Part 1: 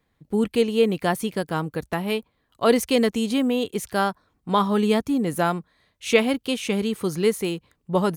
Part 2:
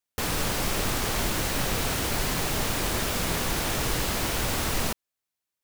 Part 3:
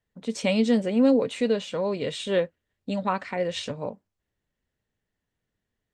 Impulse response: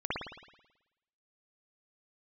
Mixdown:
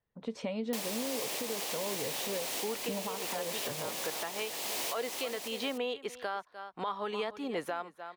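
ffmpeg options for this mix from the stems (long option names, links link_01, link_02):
-filter_complex "[0:a]acrossover=split=430 4800:gain=0.0794 1 0.126[link_01][link_02][link_03];[link_01][link_02][link_03]amix=inputs=3:normalize=0,adelay=2300,volume=-4.5dB,asplit=2[link_04][link_05];[link_05]volume=-16.5dB[link_06];[1:a]highpass=520,equalizer=frequency=1400:width=2:gain=-11.5,adelay=550,volume=-8.5dB,asplit=2[link_07][link_08];[link_08]volume=-7.5dB[link_09];[2:a]equalizer=frequency=125:width_type=o:width=1:gain=4,equalizer=frequency=500:width_type=o:width=1:gain=4,equalizer=frequency=1000:width_type=o:width=1:gain=7,equalizer=frequency=8000:width_type=o:width=1:gain=-11,acompressor=threshold=-24dB:ratio=6,volume=-6.5dB,asplit=2[link_10][link_11];[link_11]apad=whole_len=461516[link_12];[link_04][link_12]sidechaincompress=threshold=-42dB:ratio=8:attack=16:release=172[link_13];[link_13][link_07]amix=inputs=2:normalize=0,acontrast=38,alimiter=limit=-22dB:level=0:latency=1:release=338,volume=0dB[link_14];[link_06][link_09]amix=inputs=2:normalize=0,aecho=0:1:299:1[link_15];[link_10][link_14][link_15]amix=inputs=3:normalize=0,alimiter=level_in=1dB:limit=-24dB:level=0:latency=1:release=276,volume=-1dB"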